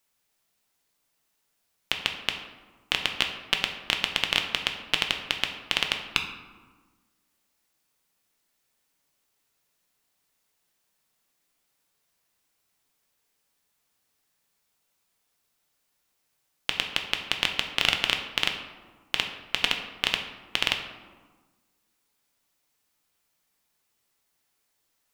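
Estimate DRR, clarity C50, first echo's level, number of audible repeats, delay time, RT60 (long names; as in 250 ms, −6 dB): 3.5 dB, 7.5 dB, no echo audible, no echo audible, no echo audible, 1.4 s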